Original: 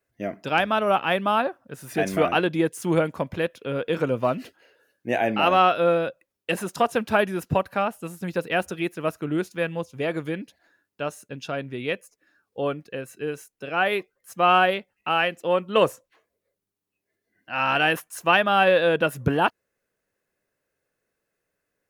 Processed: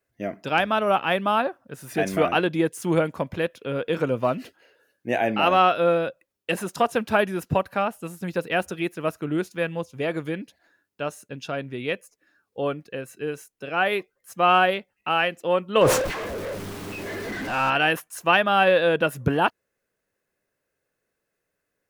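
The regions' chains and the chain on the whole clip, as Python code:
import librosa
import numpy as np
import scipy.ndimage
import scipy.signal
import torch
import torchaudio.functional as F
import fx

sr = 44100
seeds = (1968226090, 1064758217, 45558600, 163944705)

y = fx.chain(x, sr, fx.zero_step(step_db=-22.5),
    fx.lowpass(hz=1700.0, slope=6),
    fx.sustainer(db_per_s=53.0), at=(15.81, 17.7))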